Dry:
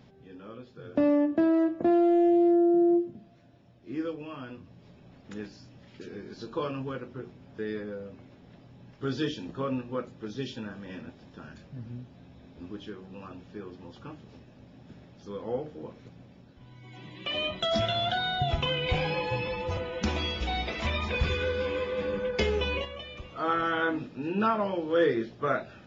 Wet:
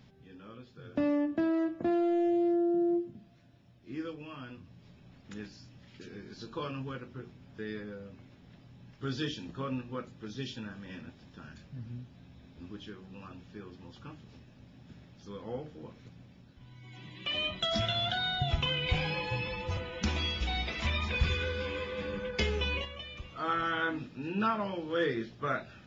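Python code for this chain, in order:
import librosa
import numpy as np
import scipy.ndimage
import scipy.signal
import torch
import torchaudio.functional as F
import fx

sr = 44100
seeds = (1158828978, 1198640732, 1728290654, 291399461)

y = fx.peak_eq(x, sr, hz=520.0, db=-7.5, octaves=2.3)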